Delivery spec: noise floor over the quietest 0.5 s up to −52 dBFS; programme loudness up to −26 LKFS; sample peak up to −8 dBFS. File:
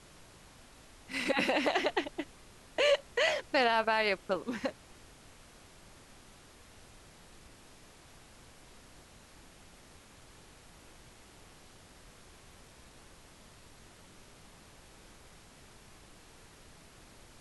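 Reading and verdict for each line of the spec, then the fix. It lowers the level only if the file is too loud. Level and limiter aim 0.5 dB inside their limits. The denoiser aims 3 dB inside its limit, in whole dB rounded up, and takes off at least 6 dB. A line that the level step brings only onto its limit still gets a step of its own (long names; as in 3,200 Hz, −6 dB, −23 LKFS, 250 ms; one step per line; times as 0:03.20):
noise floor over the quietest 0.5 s −56 dBFS: in spec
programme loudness −31.0 LKFS: in spec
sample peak −15.5 dBFS: in spec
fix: no processing needed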